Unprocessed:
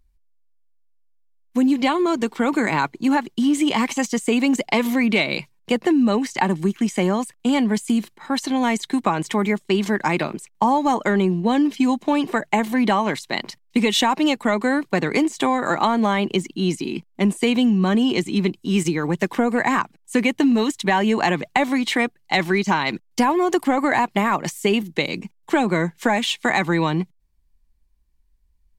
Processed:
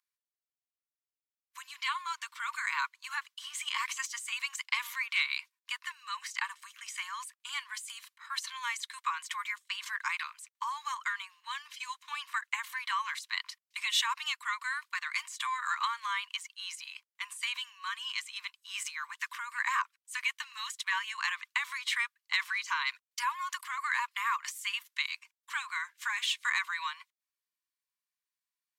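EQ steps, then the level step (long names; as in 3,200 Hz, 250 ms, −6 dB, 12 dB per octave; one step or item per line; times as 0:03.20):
Butterworth high-pass 1,000 Hz 96 dB per octave
−7.5 dB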